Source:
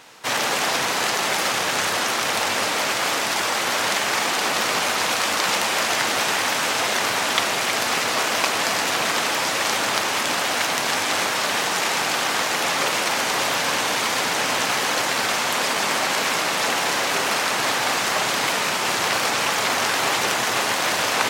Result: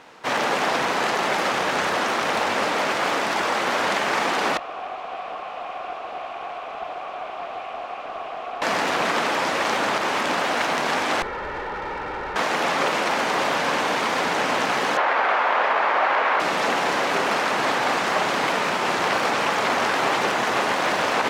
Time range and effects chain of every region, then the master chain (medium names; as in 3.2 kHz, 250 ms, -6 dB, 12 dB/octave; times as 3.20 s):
4.57–8.62 s: one-bit comparator + vowel filter a + loudspeaker Doppler distortion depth 0.47 ms
11.22–12.36 s: comb filter that takes the minimum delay 2.2 ms + low-pass 2.1 kHz 24 dB/octave + hard clipper -29 dBFS
14.97–16.40 s: square wave that keeps the level + band-pass 680–2300 Hz
whole clip: low-pass 1.4 kHz 6 dB/octave; peaking EQ 110 Hz -7.5 dB 0.71 oct; loudness maximiser +11.5 dB; trim -8 dB